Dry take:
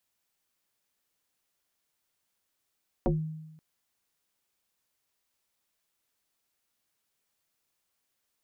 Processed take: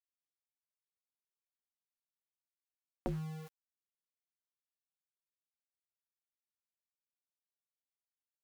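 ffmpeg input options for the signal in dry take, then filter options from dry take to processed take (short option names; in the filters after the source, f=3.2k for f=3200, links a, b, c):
-f lavfi -i "aevalsrc='0.0944*pow(10,-3*t/1.01)*sin(2*PI*157*t+3.5*pow(10,-3*t/0.23)*sin(2*PI*1.23*157*t))':d=0.53:s=44100"
-af "acompressor=threshold=-39dB:ratio=2.5,aeval=exprs='val(0)*gte(abs(val(0)),0.00531)':c=same"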